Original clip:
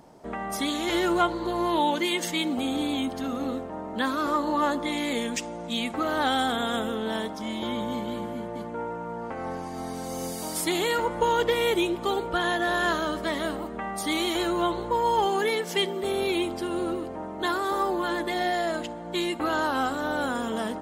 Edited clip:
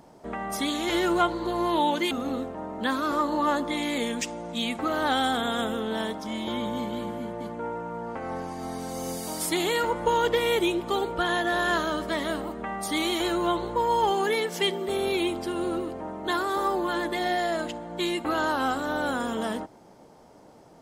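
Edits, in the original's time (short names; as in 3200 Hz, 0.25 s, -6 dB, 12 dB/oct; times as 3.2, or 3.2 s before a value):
2.11–3.26 cut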